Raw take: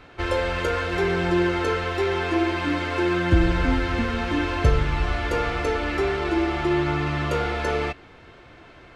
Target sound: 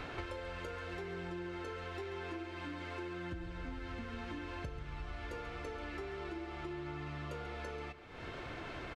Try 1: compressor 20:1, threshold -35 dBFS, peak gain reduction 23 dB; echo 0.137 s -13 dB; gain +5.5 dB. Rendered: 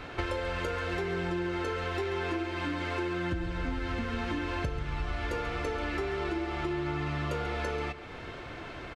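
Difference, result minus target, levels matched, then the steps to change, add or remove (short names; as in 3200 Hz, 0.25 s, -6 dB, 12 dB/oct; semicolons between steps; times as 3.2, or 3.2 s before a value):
compressor: peak gain reduction -10.5 dB
change: compressor 20:1, threshold -46 dBFS, peak gain reduction 33.5 dB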